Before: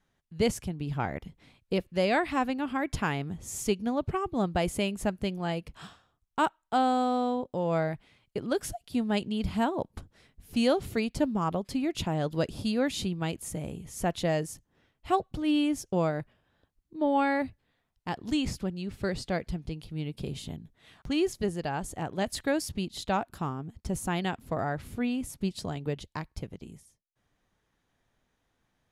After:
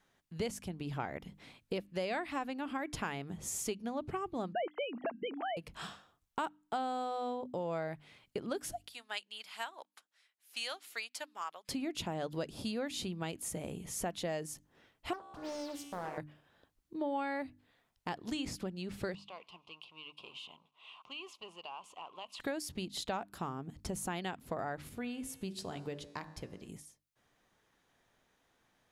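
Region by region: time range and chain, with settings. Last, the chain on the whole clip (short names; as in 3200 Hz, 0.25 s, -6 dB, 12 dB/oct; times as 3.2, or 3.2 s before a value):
4.53–5.57 sine-wave speech + air absorption 180 m
8.89–11.68 HPF 1400 Hz + upward expander, over -57 dBFS
15.13–16.18 notch 3000 Hz, Q 23 + resonator 71 Hz, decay 1.6 s, mix 80% + Doppler distortion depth 0.89 ms
19.15–22.4 G.711 law mismatch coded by mu + double band-pass 1700 Hz, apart 1.4 oct + compressor 2.5:1, threshold -47 dBFS
24.89–26.69 resonator 96 Hz, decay 1.5 s, mix 50% + de-hum 53.22 Hz, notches 34
whole clip: low shelf 150 Hz -10.5 dB; notches 50/100/150/200/250/300 Hz; compressor 3:1, threshold -42 dBFS; gain +4 dB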